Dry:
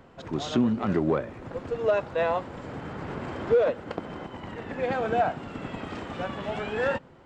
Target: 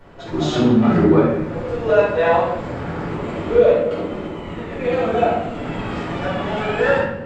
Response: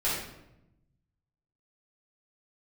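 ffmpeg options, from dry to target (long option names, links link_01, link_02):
-filter_complex "[0:a]asettb=1/sr,asplit=3[link_01][link_02][link_03];[link_01]atrim=end=3.064[link_04];[link_02]atrim=start=3.06:end=5.58,asetpts=PTS-STARTPTS,afade=type=in:duration=0.004:curve=qsin,afade=type=out:start_time=2.516:duration=0.004:curve=qsin,equalizer=frequency=125:width_type=o:width=0.33:gain=-9,equalizer=frequency=800:width_type=o:width=0.33:gain=-7,equalizer=frequency=1600:width_type=o:width=0.33:gain=-8,equalizer=frequency=5000:width_type=o:width=0.33:gain=-5[link_05];[link_03]atrim=start=5.576[link_06];[link_04][link_05]acrossfade=duration=0.004:curve1=hsin:curve2=qsin[link_07];[link_07][link_06]acrossfade=duration=0.004:curve1=qsin:curve2=hsin[link_08];[1:a]atrim=start_sample=2205,asetrate=42336,aresample=44100[link_09];[link_08][link_09]afir=irnorm=-1:irlink=0"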